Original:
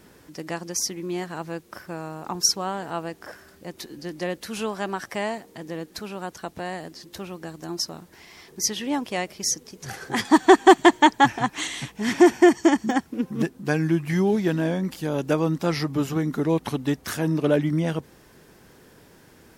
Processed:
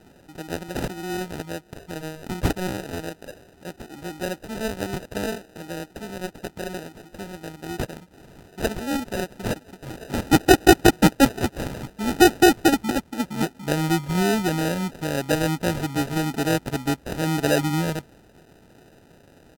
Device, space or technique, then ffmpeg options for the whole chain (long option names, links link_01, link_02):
crushed at another speed: -af "asetrate=55125,aresample=44100,acrusher=samples=32:mix=1:aa=0.000001,asetrate=35280,aresample=44100"